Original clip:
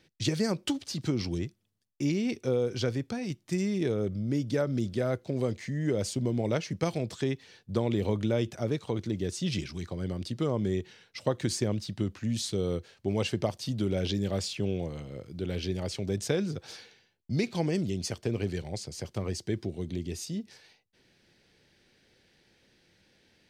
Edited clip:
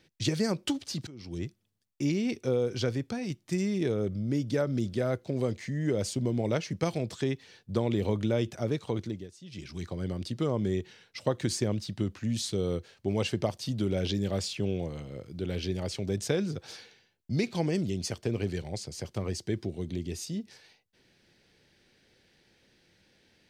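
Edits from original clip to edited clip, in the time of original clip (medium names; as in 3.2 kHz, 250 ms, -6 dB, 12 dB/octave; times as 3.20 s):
1.07–1.46 s: fade in quadratic, from -20 dB
8.99–9.81 s: dip -17 dB, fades 0.30 s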